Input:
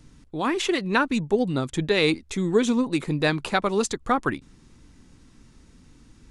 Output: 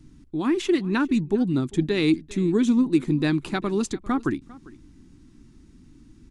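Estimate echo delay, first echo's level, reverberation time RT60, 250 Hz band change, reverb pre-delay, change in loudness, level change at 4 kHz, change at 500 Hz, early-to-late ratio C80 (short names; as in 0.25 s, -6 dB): 0.399 s, -21.0 dB, none, +4.0 dB, none, +0.5 dB, -5.5 dB, -2.5 dB, none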